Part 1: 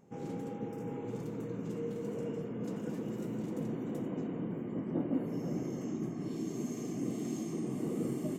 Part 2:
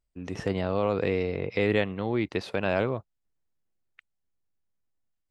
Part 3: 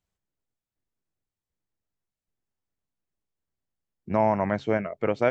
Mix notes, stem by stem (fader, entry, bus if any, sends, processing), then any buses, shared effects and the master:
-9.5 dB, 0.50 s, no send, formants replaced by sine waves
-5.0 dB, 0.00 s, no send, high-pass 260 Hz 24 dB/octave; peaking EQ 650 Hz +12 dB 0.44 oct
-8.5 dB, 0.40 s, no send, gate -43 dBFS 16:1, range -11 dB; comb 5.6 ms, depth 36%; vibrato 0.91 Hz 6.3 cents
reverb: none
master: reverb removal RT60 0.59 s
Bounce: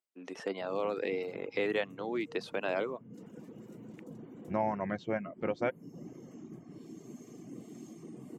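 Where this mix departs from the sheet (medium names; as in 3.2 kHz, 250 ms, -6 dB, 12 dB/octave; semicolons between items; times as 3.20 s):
stem 1: missing formants replaced by sine waves; stem 2: missing peaking EQ 650 Hz +12 dB 0.44 oct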